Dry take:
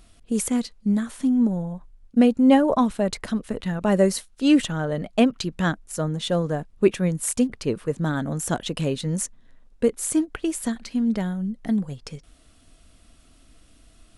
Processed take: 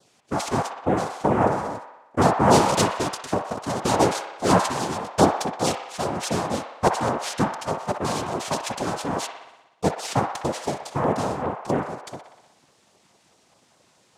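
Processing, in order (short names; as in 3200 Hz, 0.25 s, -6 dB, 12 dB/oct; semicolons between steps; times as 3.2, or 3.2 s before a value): noise vocoder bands 2; LFO notch saw down 4.8 Hz 250–2700 Hz; band-limited delay 61 ms, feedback 66%, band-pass 1400 Hz, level -5 dB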